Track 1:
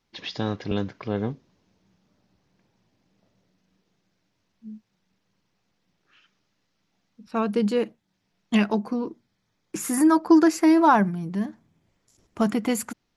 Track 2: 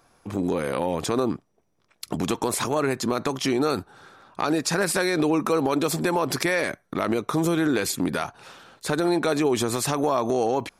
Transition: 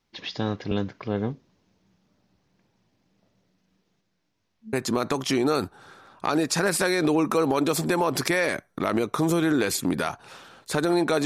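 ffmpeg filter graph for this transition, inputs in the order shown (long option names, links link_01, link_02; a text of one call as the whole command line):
ffmpeg -i cue0.wav -i cue1.wav -filter_complex "[0:a]asplit=3[link_01][link_02][link_03];[link_01]afade=type=out:start_time=4:duration=0.02[link_04];[link_02]flanger=delay=19:depth=5.1:speed=2.7,afade=type=in:start_time=4:duration=0.02,afade=type=out:start_time=4.73:duration=0.02[link_05];[link_03]afade=type=in:start_time=4.73:duration=0.02[link_06];[link_04][link_05][link_06]amix=inputs=3:normalize=0,apad=whole_dur=11.25,atrim=end=11.25,atrim=end=4.732[link_07];[1:a]atrim=start=2.878:end=9.4[link_08];[link_07][link_08]acrossfade=duration=0.004:curve1=hsin:curve2=hsin" out.wav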